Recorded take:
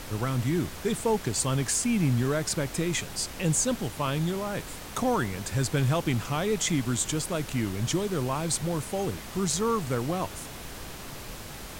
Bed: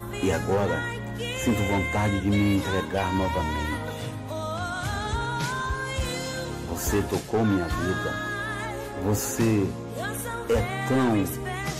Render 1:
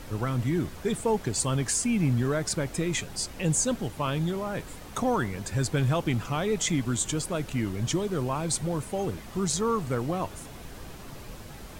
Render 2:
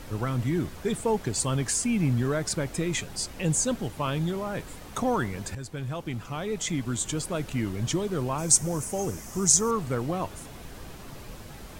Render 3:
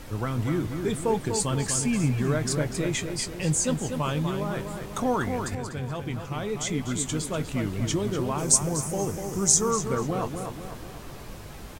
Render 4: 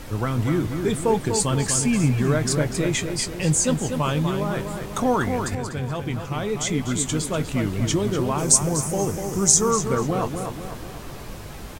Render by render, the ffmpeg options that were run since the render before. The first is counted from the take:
-af "afftdn=nr=7:nf=-41"
-filter_complex "[0:a]asettb=1/sr,asplit=3[s0][s1][s2];[s0]atrim=end=8.384[s3];[s1]atrim=start=8.38:end=9.71,asetpts=PTS-STARTPTS,afade=t=in:d=0.004:c=qsin,afade=t=out:st=1.326:d=0.004:c=qsin,highshelf=f=4900:t=q:w=3:g=7[s4];[s2]atrim=start=9.706[s5];[s3][s4]acrossfade=d=0.004:c1=hsin:c2=qsin[s6];[s6][s5]acrossfade=d=0.004:c1=qsin:c2=hsin,asplit=2[s7][s8];[s7]atrim=end=5.55,asetpts=PTS-STARTPTS,afade=t=out:st=5.546:d=0.004:c=hsin:silence=0.251189[s9];[s8]atrim=start=5.55,asetpts=PTS-STARTPTS,afade=t=in:d=1.84:silence=0.251189[s10];[s9][s10]concat=n=2:v=0:a=1"
-filter_complex "[0:a]asplit=2[s0][s1];[s1]adelay=20,volume=0.224[s2];[s0][s2]amix=inputs=2:normalize=0,asplit=2[s3][s4];[s4]adelay=245,lowpass=f=3100:p=1,volume=0.501,asplit=2[s5][s6];[s6]adelay=245,lowpass=f=3100:p=1,volume=0.51,asplit=2[s7][s8];[s8]adelay=245,lowpass=f=3100:p=1,volume=0.51,asplit=2[s9][s10];[s10]adelay=245,lowpass=f=3100:p=1,volume=0.51,asplit=2[s11][s12];[s12]adelay=245,lowpass=f=3100:p=1,volume=0.51,asplit=2[s13][s14];[s14]adelay=245,lowpass=f=3100:p=1,volume=0.51[s15];[s3][s5][s7][s9][s11][s13][s15]amix=inputs=7:normalize=0"
-af "volume=1.68,alimiter=limit=0.708:level=0:latency=1"

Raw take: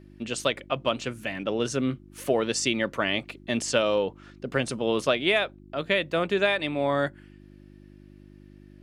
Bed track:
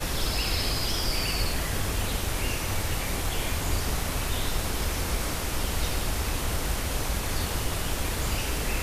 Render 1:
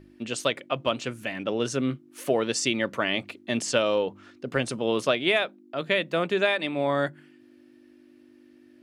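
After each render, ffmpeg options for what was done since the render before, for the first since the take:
-af "bandreject=f=50:t=h:w=4,bandreject=f=100:t=h:w=4,bandreject=f=150:t=h:w=4,bandreject=f=200:t=h:w=4"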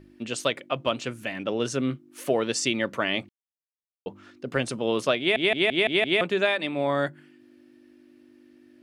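-filter_complex "[0:a]asplit=9[s0][s1][s2][s3][s4][s5][s6][s7][s8];[s0]atrim=end=3.29,asetpts=PTS-STARTPTS,afade=t=out:st=3.286:d=0.004:c=hsin[s9];[s1]atrim=start=3.29:end=4.06,asetpts=PTS-STARTPTS,volume=0[s10];[s2]atrim=start=4.06:end=5.362,asetpts=PTS-STARTPTS,afade=t=in:d=0.004:c=hsin[s11];[s3]atrim=start=5.188:end=5.362[s12];[s4]atrim=start=5.188:end=5.362[s13];[s5]atrim=start=5.188:end=5.362[s14];[s6]atrim=start=5.188:end=5.362[s15];[s7]atrim=start=5.188:end=5.362[s16];[s8]atrim=start=6.208[s17];[s9][s10][s11]concat=n=3:v=0:a=1[s18];[s18][s12]acrossfade=d=0.004:c1=hsin:c2=hsin[s19];[s19][s13]acrossfade=d=0.004:c1=hsin:c2=hsin[s20];[s20][s14]acrossfade=d=0.004:c1=hsin:c2=hsin[s21];[s21][s15]acrossfade=d=0.004:c1=hsin:c2=hsin[s22];[s22][s16]acrossfade=d=0.004:c1=hsin:c2=hsin[s23];[s23][s17]acrossfade=d=0.004:c1=hsin:c2=hsin"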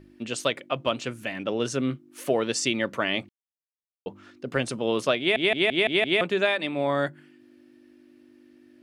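-af anull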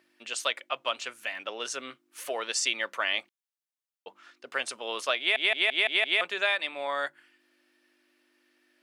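-af "highpass=880"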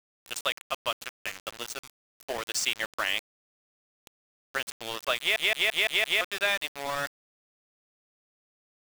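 -af "aeval=exprs='val(0)*gte(abs(val(0)),0.0299)':c=same"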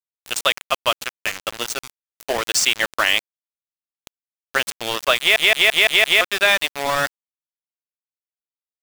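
-af "volume=3.55,alimiter=limit=0.794:level=0:latency=1"

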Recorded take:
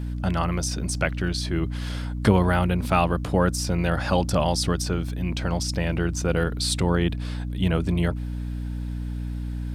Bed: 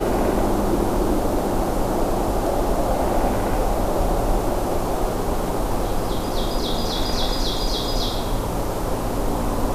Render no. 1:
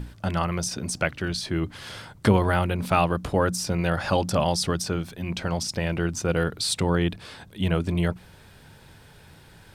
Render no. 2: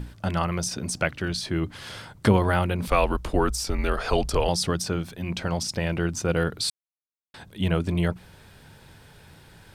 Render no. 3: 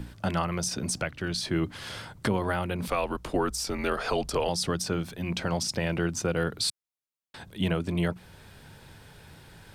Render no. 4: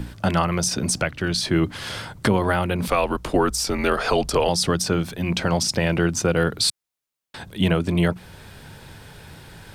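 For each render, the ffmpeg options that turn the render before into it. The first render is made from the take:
-af "bandreject=f=60:t=h:w=6,bandreject=f=120:t=h:w=6,bandreject=f=180:t=h:w=6,bandreject=f=240:t=h:w=6,bandreject=f=300:t=h:w=6"
-filter_complex "[0:a]asettb=1/sr,asplit=3[s0][s1][s2];[s0]atrim=end=2.874[s3];[s1]atrim=start=2.87:end=4.49,asetpts=PTS-STARTPTS,afade=t=in:d=0.004:c=qsin,afade=t=out:st=1.616:d=0.004:c=qsin,afreqshift=-120[s4];[s2]atrim=start=4.486[s5];[s3][s4]acrossfade=d=0.004:c1=hsin:c2=qsin[s6];[s6][s5]acrossfade=d=0.004:c1=qsin:c2=hsin,asplit=3[s7][s8][s9];[s7]atrim=end=6.7,asetpts=PTS-STARTPTS,afade=t=out:st=6.696:d=0.004:c=hsin[s10];[s8]atrim=start=6.7:end=7.34,asetpts=PTS-STARTPTS,volume=0[s11];[s9]atrim=start=7.34,asetpts=PTS-STARTPTS,afade=t=in:d=0.004:c=hsin[s12];[s10][s11][s12]concat=n=3:v=0:a=1"
-filter_complex "[0:a]acrossover=split=120[s0][s1];[s0]acompressor=threshold=0.01:ratio=6[s2];[s1]alimiter=limit=0.158:level=0:latency=1:release=392[s3];[s2][s3]amix=inputs=2:normalize=0"
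-af "volume=2.37"

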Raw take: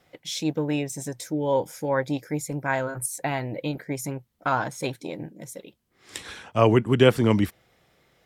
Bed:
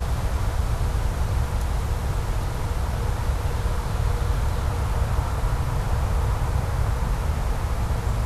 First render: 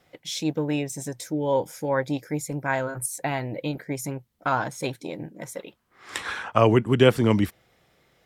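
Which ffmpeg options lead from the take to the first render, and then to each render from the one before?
-filter_complex "[0:a]asettb=1/sr,asplit=3[s0][s1][s2];[s0]atrim=end=5.344[s3];[s1]atrim=start=5.34:end=6.58,asetpts=PTS-STARTPTS,afade=t=in:d=0.004:c=qsin,afade=t=out:st=1.236:d=0.004:c=qsin,equalizer=f=1200:w=0.71:g=13.5[s4];[s2]atrim=start=6.576[s5];[s3][s4]acrossfade=d=0.004:c1=hsin:c2=qsin[s6];[s6][s5]acrossfade=d=0.004:c1=qsin:c2=hsin"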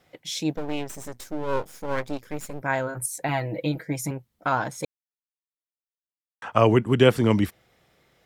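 -filter_complex "[0:a]asettb=1/sr,asplit=3[s0][s1][s2];[s0]atrim=end=0.564[s3];[s1]atrim=start=0.56:end=2.62,asetpts=PTS-STARTPTS,afade=t=in:d=0.004:c=qsin,afade=t=out:st=2.056:d=0.004:c=qsin,aeval=exprs='max(val(0),0)':c=same[s4];[s2]atrim=start=2.616[s5];[s3][s4]acrossfade=d=0.004:c1=hsin:c2=qsin[s6];[s6][s5]acrossfade=d=0.004:c1=qsin:c2=hsin,asettb=1/sr,asplit=3[s7][s8][s9];[s7]atrim=end=3.284[s10];[s8]atrim=start=3.28:end=4.11,asetpts=PTS-STARTPTS,afade=t=in:d=0.004:c=qsin,afade=t=out:st=0.826:d=0.004:c=qsin,aecho=1:1:6.2:0.65,atrim=end_sample=36603[s11];[s9]atrim=start=4.106[s12];[s10][s11]acrossfade=d=0.004:c1=hsin:c2=qsin[s13];[s13][s12]acrossfade=d=0.004:c1=qsin:c2=hsin,asplit=3[s14][s15][s16];[s14]atrim=end=4.85,asetpts=PTS-STARTPTS,afade=t=out:st=4.846:d=0.004:c=hsin[s17];[s15]atrim=start=4.85:end=6.42,asetpts=PTS-STARTPTS,volume=0[s18];[s16]atrim=start=6.42,asetpts=PTS-STARTPTS,afade=t=in:d=0.004:c=hsin[s19];[s17][s18][s19]concat=n=3:v=0:a=1"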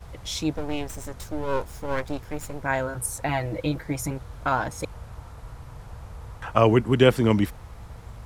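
-filter_complex "[1:a]volume=0.141[s0];[0:a][s0]amix=inputs=2:normalize=0"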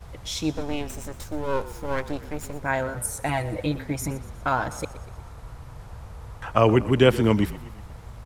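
-filter_complex "[0:a]asplit=6[s0][s1][s2][s3][s4][s5];[s1]adelay=120,afreqshift=-32,volume=0.158[s6];[s2]adelay=240,afreqshift=-64,volume=0.0871[s7];[s3]adelay=360,afreqshift=-96,volume=0.0479[s8];[s4]adelay=480,afreqshift=-128,volume=0.0263[s9];[s5]adelay=600,afreqshift=-160,volume=0.0145[s10];[s0][s6][s7][s8][s9][s10]amix=inputs=6:normalize=0"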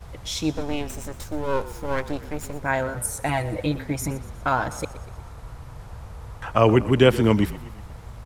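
-af "volume=1.19,alimiter=limit=0.708:level=0:latency=1"

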